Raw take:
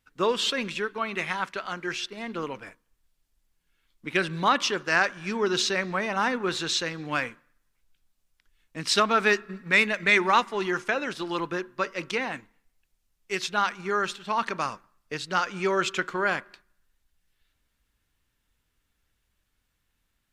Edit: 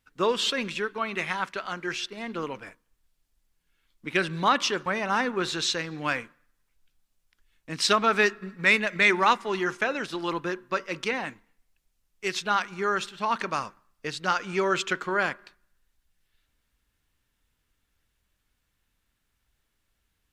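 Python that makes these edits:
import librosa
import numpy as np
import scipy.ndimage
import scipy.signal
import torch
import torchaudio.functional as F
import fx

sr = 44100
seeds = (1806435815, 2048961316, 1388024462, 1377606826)

y = fx.edit(x, sr, fx.cut(start_s=4.86, length_s=1.07), tone=tone)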